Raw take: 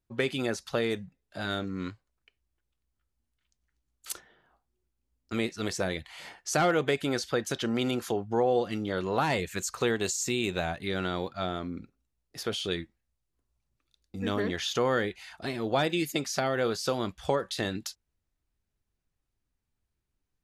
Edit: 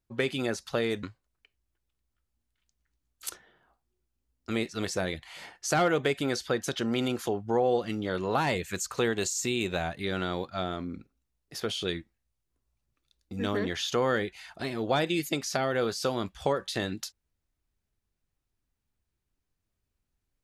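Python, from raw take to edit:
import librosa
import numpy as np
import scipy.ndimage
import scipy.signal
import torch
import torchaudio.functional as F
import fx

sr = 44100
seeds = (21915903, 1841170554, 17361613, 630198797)

y = fx.edit(x, sr, fx.cut(start_s=1.03, length_s=0.83), tone=tone)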